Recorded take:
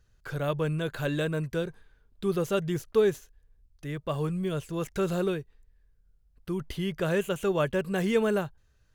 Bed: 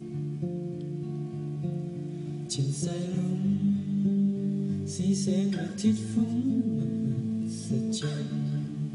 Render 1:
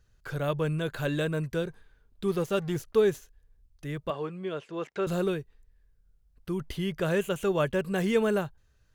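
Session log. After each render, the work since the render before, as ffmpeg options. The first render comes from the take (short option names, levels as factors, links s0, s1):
-filter_complex "[0:a]asettb=1/sr,asplit=3[s0][s1][s2];[s0]atrim=end=2.284[s3];[s1]atrim=start=2.28:end=2.76,asetpts=PTS-STARTPTS,afade=t=in:d=0.004:c=qsin,afade=t=out:st=0.476:d=0.004:c=qsin,aeval=exprs='sgn(val(0))*max(abs(val(0))-0.00501,0)':c=same[s4];[s2]atrim=start=2.756[s5];[s3][s4]acrossfade=d=0.004:c1=hsin:c2=qsin[s6];[s6][s5]acrossfade=d=0.004:c1=qsin:c2=hsin,asettb=1/sr,asplit=3[s7][s8][s9];[s7]atrim=end=4.104[s10];[s8]atrim=start=4.1:end=5.07,asetpts=PTS-STARTPTS,afade=t=in:d=0.004:c=qsin,afade=t=out:st=0.966:d=0.004:c=qsin,highpass=300,lowpass=3400[s11];[s9]atrim=start=5.066[s12];[s10][s11]acrossfade=d=0.004:c1=hsin:c2=qsin[s13];[s13][s12]acrossfade=d=0.004:c1=qsin:c2=hsin"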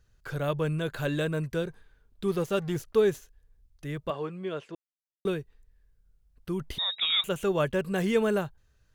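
-filter_complex "[0:a]asettb=1/sr,asplit=3[s0][s1][s2];[s0]atrim=end=6.784[s3];[s1]atrim=start=6.78:end=7.24,asetpts=PTS-STARTPTS,afade=t=in:d=0.004:c=qsin,afade=t=out:st=0.456:d=0.004:c=qsin,lowpass=f=3300:t=q:w=0.5098,lowpass=f=3300:t=q:w=0.6013,lowpass=f=3300:t=q:w=0.9,lowpass=f=3300:t=q:w=2.563,afreqshift=-3900[s4];[s2]atrim=start=7.236[s5];[s3][s4]acrossfade=d=0.004:c1=hsin:c2=qsin[s6];[s6][s5]acrossfade=d=0.004:c1=qsin:c2=hsin,asplit=3[s7][s8][s9];[s7]atrim=end=4.75,asetpts=PTS-STARTPTS,afade=t=out:st=4.746:d=0.004:c=hsin[s10];[s8]atrim=start=4.75:end=5.25,asetpts=PTS-STARTPTS,volume=0[s11];[s9]atrim=start=5.25,asetpts=PTS-STARTPTS,afade=t=in:d=0.004:c=hsin[s12];[s10][s11][s12]concat=n=3:v=0:a=1"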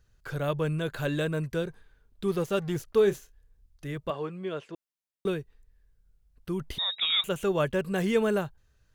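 -filter_complex "[0:a]asettb=1/sr,asplit=3[s0][s1][s2];[s0]atrim=end=2.924[s3];[s1]atrim=start=2.92:end=3.96,asetpts=PTS-STARTPTS,afade=t=in:d=0.004:c=qsin,afade=t=out:st=1.036:d=0.004:c=qsin,asplit=2[s4][s5];[s5]adelay=30,volume=0.251[s6];[s4][s6]amix=inputs=2:normalize=0,atrim=end_sample=45864[s7];[s2]atrim=start=3.956[s8];[s3][s7]acrossfade=d=0.004:c1=hsin:c2=qsin[s9];[s9][s8]acrossfade=d=0.004:c1=qsin:c2=hsin"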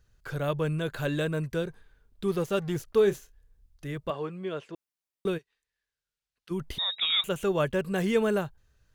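-filter_complex "[0:a]asplit=3[s0][s1][s2];[s0]afade=t=out:st=5.37:d=0.02[s3];[s1]bandpass=f=3600:t=q:w=0.69,afade=t=in:st=5.37:d=0.02,afade=t=out:st=6.5:d=0.02[s4];[s2]afade=t=in:st=6.5:d=0.02[s5];[s3][s4][s5]amix=inputs=3:normalize=0"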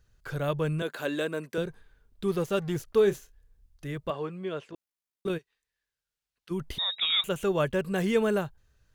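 -filter_complex "[0:a]asettb=1/sr,asplit=3[s0][s1][s2];[s0]atrim=end=0.824[s3];[s1]atrim=start=0.82:end=1.58,asetpts=PTS-STARTPTS,afade=t=in:d=0.004:c=qsin,afade=t=out:st=0.756:d=0.004:c=qsin,highpass=f=220:w=0.5412,highpass=f=220:w=1.3066[s4];[s2]atrim=start=1.576[s5];[s3][s4]acrossfade=d=0.004:c1=hsin:c2=qsin[s6];[s6][s5]acrossfade=d=0.004:c1=qsin:c2=hsin,asettb=1/sr,asplit=3[s7][s8][s9];[s7]atrim=end=4.694[s10];[s8]atrim=start=4.69:end=5.3,asetpts=PTS-STARTPTS,afade=t=in:d=0.004:c=qsin,afade=t=out:st=0.606:d=0.004:c=qsin,tremolo=f=54:d=0.519[s11];[s9]atrim=start=5.296[s12];[s10][s11]acrossfade=d=0.004:c1=hsin:c2=qsin[s13];[s13][s12]acrossfade=d=0.004:c1=qsin:c2=hsin"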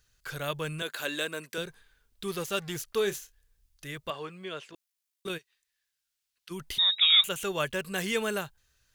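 -af "tiltshelf=f=1300:g=-8"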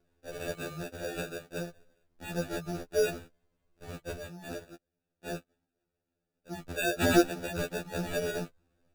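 -af "acrusher=samples=42:mix=1:aa=0.000001,afftfilt=real='re*2*eq(mod(b,4),0)':imag='im*2*eq(mod(b,4),0)':win_size=2048:overlap=0.75"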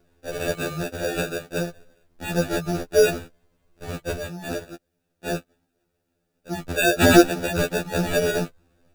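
-af "volume=3.35,alimiter=limit=0.708:level=0:latency=1"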